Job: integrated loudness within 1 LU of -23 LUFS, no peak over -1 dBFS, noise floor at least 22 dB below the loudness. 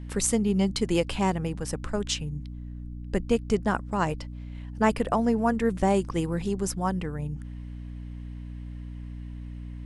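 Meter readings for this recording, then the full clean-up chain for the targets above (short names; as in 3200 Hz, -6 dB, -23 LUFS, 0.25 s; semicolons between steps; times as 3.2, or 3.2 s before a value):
hum 60 Hz; harmonics up to 300 Hz; hum level -35 dBFS; loudness -27.5 LUFS; peak -8.5 dBFS; loudness target -23.0 LUFS
-> notches 60/120/180/240/300 Hz; gain +4.5 dB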